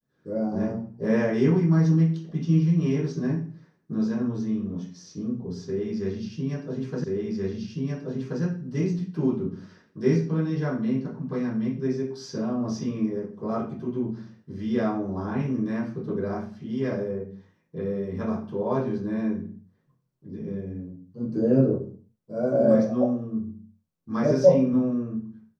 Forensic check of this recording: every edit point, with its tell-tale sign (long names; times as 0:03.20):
0:07.04: the same again, the last 1.38 s